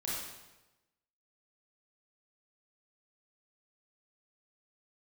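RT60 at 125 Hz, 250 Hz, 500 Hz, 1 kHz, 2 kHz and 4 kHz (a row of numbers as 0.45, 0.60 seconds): 1.2, 1.0, 1.1, 1.0, 0.95, 0.90 seconds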